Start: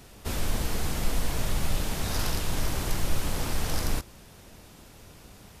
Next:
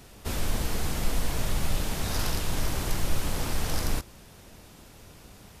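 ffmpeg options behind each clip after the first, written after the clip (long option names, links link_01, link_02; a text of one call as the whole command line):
ffmpeg -i in.wav -af anull out.wav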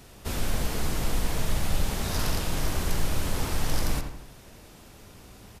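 ffmpeg -i in.wav -filter_complex "[0:a]asplit=2[link_01][link_02];[link_02]adelay=85,lowpass=frequency=2700:poles=1,volume=-6dB,asplit=2[link_03][link_04];[link_04]adelay=85,lowpass=frequency=2700:poles=1,volume=0.51,asplit=2[link_05][link_06];[link_06]adelay=85,lowpass=frequency=2700:poles=1,volume=0.51,asplit=2[link_07][link_08];[link_08]adelay=85,lowpass=frequency=2700:poles=1,volume=0.51,asplit=2[link_09][link_10];[link_10]adelay=85,lowpass=frequency=2700:poles=1,volume=0.51,asplit=2[link_11][link_12];[link_12]adelay=85,lowpass=frequency=2700:poles=1,volume=0.51[link_13];[link_01][link_03][link_05][link_07][link_09][link_11][link_13]amix=inputs=7:normalize=0" out.wav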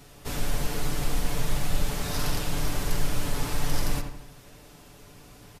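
ffmpeg -i in.wav -af "aecho=1:1:6.9:0.54,volume=-1.5dB" out.wav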